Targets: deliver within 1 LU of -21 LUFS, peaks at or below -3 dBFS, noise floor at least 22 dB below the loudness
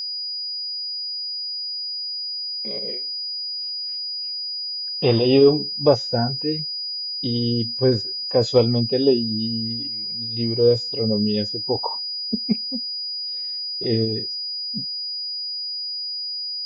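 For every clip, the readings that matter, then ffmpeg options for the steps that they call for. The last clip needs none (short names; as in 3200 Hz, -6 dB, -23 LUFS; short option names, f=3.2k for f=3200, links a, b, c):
steady tone 4900 Hz; tone level -26 dBFS; loudness -22.5 LUFS; peak -4.0 dBFS; loudness target -21.0 LUFS
-> -af "bandreject=f=4.9k:w=30"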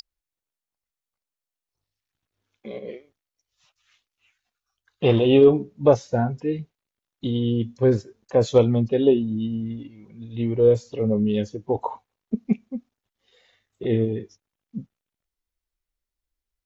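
steady tone none; loudness -22.0 LUFS; peak -4.5 dBFS; loudness target -21.0 LUFS
-> -af "volume=1dB"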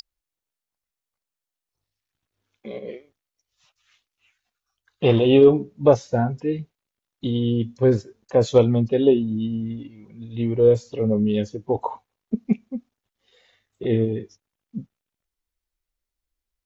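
loudness -21.0 LUFS; peak -3.5 dBFS; noise floor -88 dBFS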